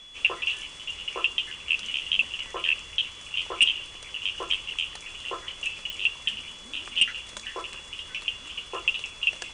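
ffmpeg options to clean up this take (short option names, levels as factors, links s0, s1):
-af "adeclick=t=4,bandreject=f=3400:w=30"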